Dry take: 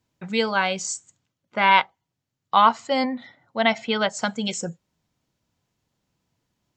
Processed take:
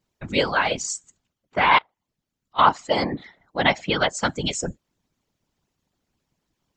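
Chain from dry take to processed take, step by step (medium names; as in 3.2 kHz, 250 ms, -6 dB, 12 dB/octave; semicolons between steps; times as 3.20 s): 1.78–2.59 s: slow attack 314 ms; whisper effect; harmonic-percussive split harmonic -9 dB; trim +2.5 dB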